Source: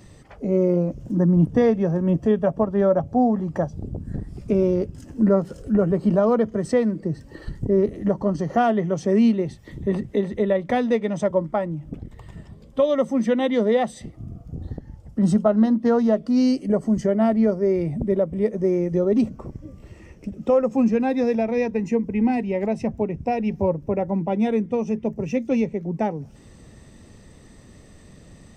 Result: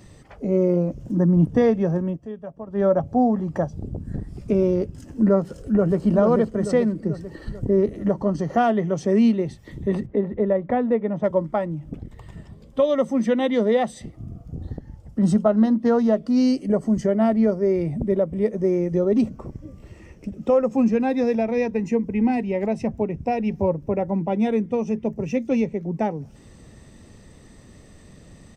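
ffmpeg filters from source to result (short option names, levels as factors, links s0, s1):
-filter_complex "[0:a]asplit=2[s0][s1];[s1]afade=t=in:st=5.41:d=0.01,afade=t=out:st=6.04:d=0.01,aecho=0:1:440|880|1320|1760|2200|2640|3080:0.595662|0.327614|0.180188|0.0991033|0.0545068|0.0299787|0.0164883[s2];[s0][s2]amix=inputs=2:normalize=0,asettb=1/sr,asplit=3[s3][s4][s5];[s3]atrim=end=10.064[s6];[s4]atrim=start=10.06:end=11.24,asetpts=PTS-STARTPTS,afade=t=in:d=0.004:c=qsin,afade=t=out:st=1.176:d=0.004:c=qsin,lowpass=1400[s7];[s5]atrim=start=11.236[s8];[s6][s7]acrossfade=d=0.004:c1=hsin:c2=qsin[s9];[s9][s8]acrossfade=d=0.004:c1=qsin:c2=hsin,asplit=3[s10][s11][s12];[s10]atrim=end=2.18,asetpts=PTS-STARTPTS,afade=t=out:st=1.97:d=0.21:silence=0.177828[s13];[s11]atrim=start=2.18:end=2.65,asetpts=PTS-STARTPTS,volume=0.178[s14];[s12]atrim=start=2.65,asetpts=PTS-STARTPTS,afade=t=in:d=0.21:silence=0.177828[s15];[s13][s14][s15]concat=n=3:v=0:a=1"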